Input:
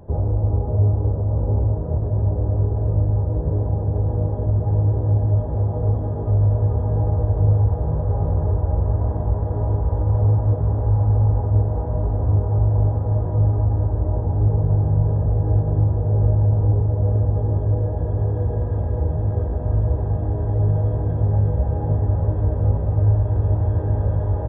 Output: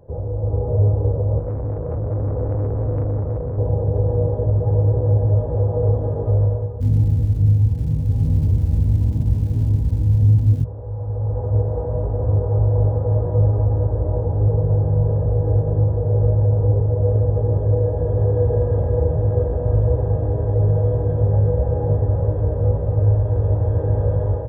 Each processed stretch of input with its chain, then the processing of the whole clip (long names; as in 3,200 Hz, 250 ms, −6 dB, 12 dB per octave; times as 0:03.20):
0:01.39–0:03.58: parametric band 260 Hz −5 dB 0.44 octaves + tube saturation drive 24 dB, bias 0.4
0:06.80–0:10.63: Butterworth low-pass 1,100 Hz + low shelf with overshoot 350 Hz +13.5 dB, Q 3 + surface crackle 570 per second −27 dBFS
whole clip: automatic gain control; thirty-one-band graphic EQ 125 Hz +8 dB, 200 Hz −4 dB, 500 Hz +12 dB; level −8 dB